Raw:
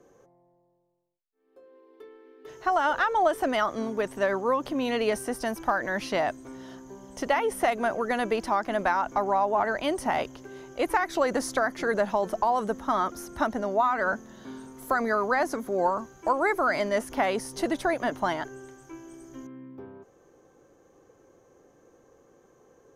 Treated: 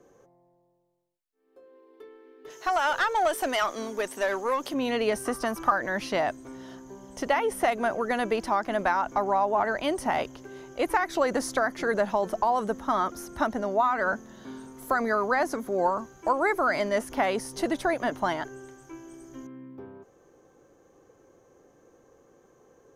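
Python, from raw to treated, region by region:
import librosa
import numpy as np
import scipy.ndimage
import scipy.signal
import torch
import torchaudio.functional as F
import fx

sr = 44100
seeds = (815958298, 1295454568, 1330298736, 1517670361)

y = fx.chain(x, sr, fx.highpass(hz=250.0, slope=12),
    fx.high_shelf(hz=2700.0, db=11.0),
    fx.tube_stage(drive_db=15.0, bias=0.4), at=(2.5, 4.74))
y = fx.chain(y, sr, fx.peak_eq(hz=1200.0, db=14.5, octaves=0.25),
    fx.band_squash(depth_pct=70), at=(5.25, 5.72))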